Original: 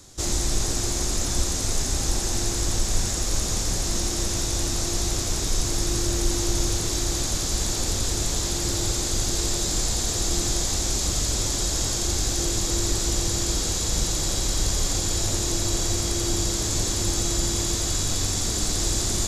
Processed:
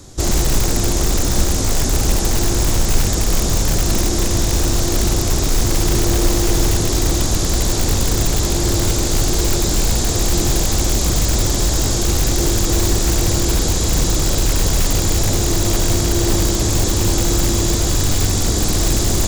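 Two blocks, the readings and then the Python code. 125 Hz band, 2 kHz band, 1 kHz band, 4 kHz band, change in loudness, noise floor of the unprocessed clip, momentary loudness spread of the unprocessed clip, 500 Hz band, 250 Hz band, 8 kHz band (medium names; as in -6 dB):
+10.5 dB, +8.0 dB, +8.5 dB, +4.5 dB, +6.5 dB, -27 dBFS, 2 LU, +9.5 dB, +10.0 dB, +4.0 dB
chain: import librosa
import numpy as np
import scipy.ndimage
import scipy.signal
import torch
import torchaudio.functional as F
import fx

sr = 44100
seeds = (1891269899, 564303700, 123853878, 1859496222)

p1 = fx.tilt_shelf(x, sr, db=4.0, hz=970.0)
p2 = (np.mod(10.0 ** (16.5 / 20.0) * p1 + 1.0, 2.0) - 1.0) / 10.0 ** (16.5 / 20.0)
p3 = p1 + F.gain(torch.from_numpy(p2), -4.5).numpy()
y = F.gain(torch.from_numpy(p3), 4.0).numpy()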